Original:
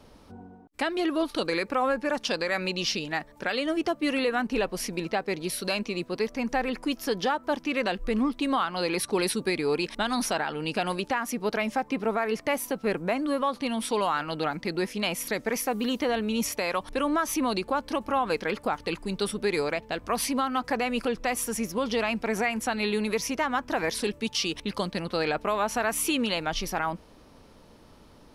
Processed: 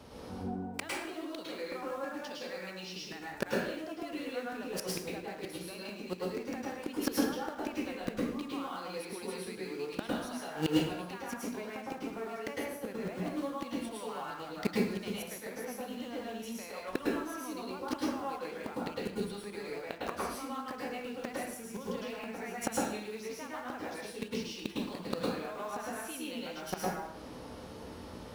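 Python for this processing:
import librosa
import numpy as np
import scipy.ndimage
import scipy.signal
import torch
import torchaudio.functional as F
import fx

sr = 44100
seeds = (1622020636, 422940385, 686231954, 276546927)

p1 = scipy.signal.sosfilt(scipy.signal.butter(4, 43.0, 'highpass', fs=sr, output='sos'), x)
p2 = fx.comb_fb(p1, sr, f0_hz=63.0, decay_s=0.35, harmonics='all', damping=0.0, mix_pct=50)
p3 = fx.quant_dither(p2, sr, seeds[0], bits=6, dither='none')
p4 = p2 + (p3 * librosa.db_to_amplitude(-5.0))
p5 = fx.gate_flip(p4, sr, shuts_db=-22.0, range_db=-25)
p6 = fx.rev_plate(p5, sr, seeds[1], rt60_s=0.73, hf_ratio=0.7, predelay_ms=95, drr_db=-5.0)
y = p6 * librosa.db_to_amplitude(5.0)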